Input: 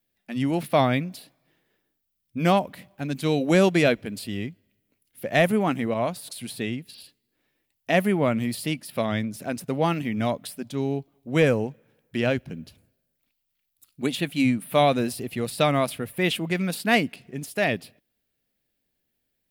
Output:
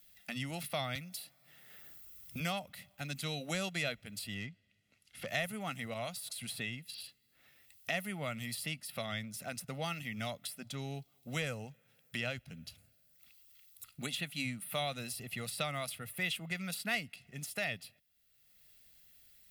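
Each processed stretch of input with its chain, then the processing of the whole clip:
0:00.95–0:02.40: high-shelf EQ 5,600 Hz +8.5 dB + gain into a clipping stage and back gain 15.5 dB + multiband upward and downward compressor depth 40%
0:04.34–0:05.28: Bessel low-pass filter 4,800 Hz + hard clipping −21.5 dBFS
whole clip: guitar amp tone stack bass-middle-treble 5-5-5; comb filter 1.5 ms, depth 47%; multiband upward and downward compressor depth 70%

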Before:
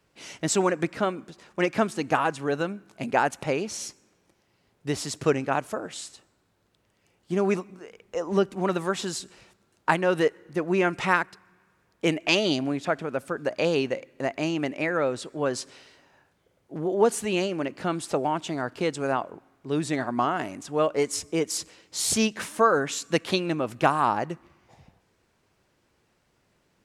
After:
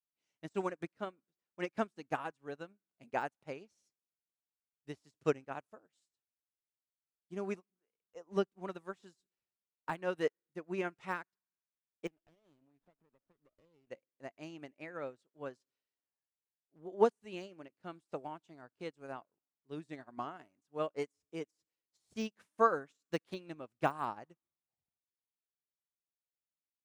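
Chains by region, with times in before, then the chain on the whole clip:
0:12.07–0:13.87: downward compressor, threshold −33 dBFS + windowed peak hold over 17 samples
whole clip: de-essing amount 75%; expander for the loud parts 2.5 to 1, over −42 dBFS; level −5 dB

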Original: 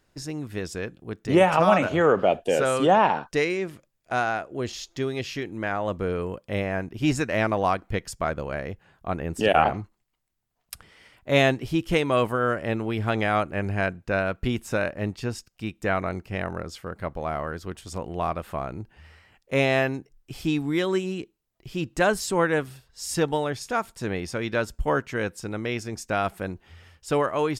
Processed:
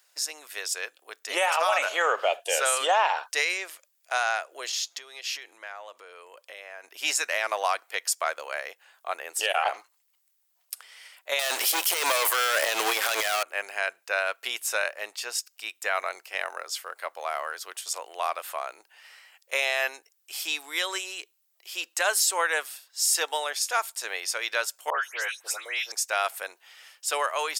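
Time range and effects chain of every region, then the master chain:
0:04.69–0:06.84: high-shelf EQ 9,500 Hz −6 dB + downward compressor 16 to 1, threshold −33 dBFS
0:11.39–0:13.43: high-shelf EQ 10,000 Hz +11.5 dB + upward compression, threshold −24 dBFS + leveller curve on the samples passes 5
0:24.90–0:25.92: high-pass filter 630 Hz 6 dB per octave + all-pass dispersion highs, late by 138 ms, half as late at 2,700 Hz
whole clip: high-pass filter 530 Hz 24 dB per octave; spectral tilt +4 dB per octave; brickwall limiter −13 dBFS

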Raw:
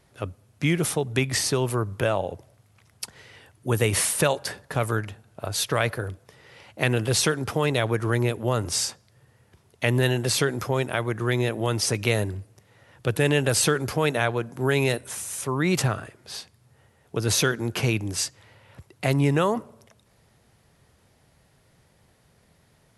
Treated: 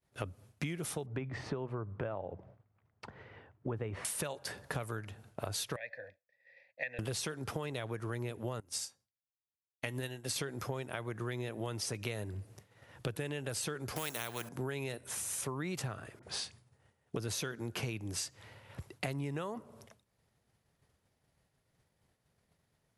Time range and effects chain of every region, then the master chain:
0:01.06–0:04.05: low-pass filter 1,500 Hz + hum removal 62.96 Hz, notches 3
0:05.76–0:06.99: formant filter e + parametric band 2,600 Hz +8 dB 2.3 octaves + phaser with its sweep stopped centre 2,000 Hz, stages 8
0:08.60–0:10.36: high-shelf EQ 4,100 Hz +6 dB + tuned comb filter 270 Hz, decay 0.17 s + expander for the loud parts 2.5 to 1, over −36 dBFS
0:13.96–0:14.49: parametric band 11,000 Hz +9 dB 2 octaves + bad sample-rate conversion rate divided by 2×, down none, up hold + every bin compressed towards the loudest bin 2 to 1
0:16.19–0:17.16: linear-phase brick-wall low-pass 11,000 Hz + all-pass dispersion highs, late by 40 ms, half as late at 1,300 Hz
whole clip: downward expander −49 dBFS; downward compressor 10 to 1, threshold −36 dBFS; level +1 dB

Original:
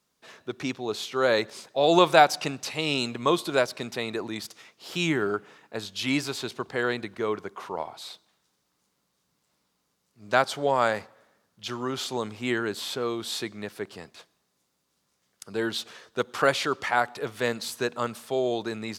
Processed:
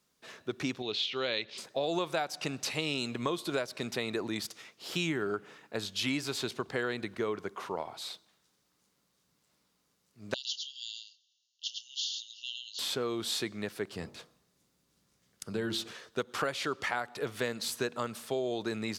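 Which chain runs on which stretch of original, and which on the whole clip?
0:00.82–0:01.58: transistor ladder low-pass 4,600 Hz, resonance 25% + high shelf with overshoot 2,000 Hz +9 dB, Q 1.5
0:10.34–0:12.79: linear-phase brick-wall band-pass 2,700–7,100 Hz + single-tap delay 107 ms −4.5 dB
0:13.96–0:15.93: low-shelf EQ 280 Hz +9 dB + downward compressor 2 to 1, threshold −30 dBFS + hum removal 48.27 Hz, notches 29
whole clip: downward compressor 6 to 1, threshold −28 dBFS; parametric band 870 Hz −3 dB 0.98 octaves

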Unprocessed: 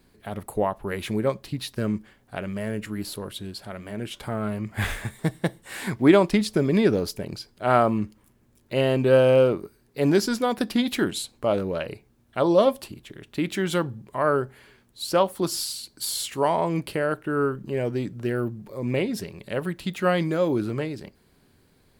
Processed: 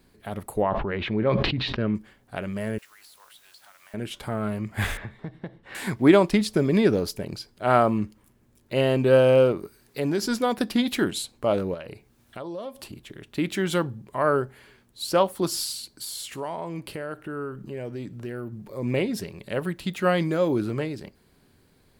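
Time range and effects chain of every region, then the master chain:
0:00.62–0:01.95: low-pass filter 3,500 Hz 24 dB per octave + level that may fall only so fast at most 28 dB per second
0:02.78–0:03.94: high-pass filter 870 Hz 24 dB per octave + downward compressor 16 to 1, threshold −48 dBFS + bit-depth reduction 10 bits, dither triangular
0:04.97–0:05.75: high-frequency loss of the air 280 metres + downward compressor, threshold −31 dBFS
0:09.51–0:10.29: downward compressor 2.5 to 1, threshold −23 dBFS + one half of a high-frequency compander encoder only
0:11.74–0:12.93: downward compressor 4 to 1, threshold −35 dBFS + one half of a high-frequency compander encoder only
0:15.96–0:18.53: downward compressor 2 to 1, threshold −36 dBFS + repeating echo 62 ms, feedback 51%, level −24 dB
whole clip: no processing

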